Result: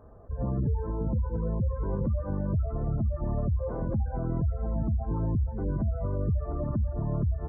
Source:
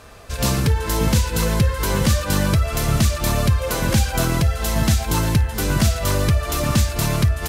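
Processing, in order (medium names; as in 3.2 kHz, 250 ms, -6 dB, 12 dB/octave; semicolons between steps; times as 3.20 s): spectral gate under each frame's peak -20 dB strong; peak limiter -15 dBFS, peak gain reduction 8 dB; crackle 170 per s -37 dBFS; Gaussian low-pass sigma 9 samples; trim -5.5 dB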